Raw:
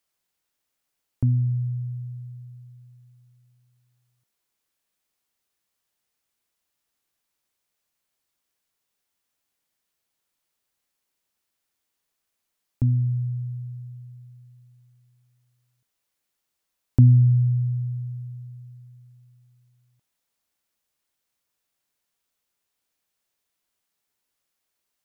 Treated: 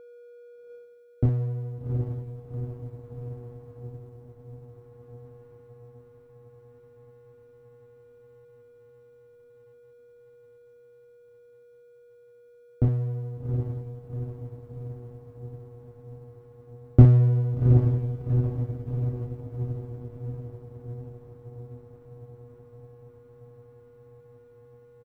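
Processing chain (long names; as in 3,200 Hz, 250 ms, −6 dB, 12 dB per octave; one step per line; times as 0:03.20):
lower of the sound and its delayed copy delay 0.52 ms
on a send: ambience of single reflections 27 ms −3.5 dB, 63 ms −9.5 dB
on the sum: steady tone 480 Hz −37 dBFS
feedback delay with all-pass diffusion 755 ms, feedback 72%, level −3 dB
power curve on the samples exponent 1.4
level +4 dB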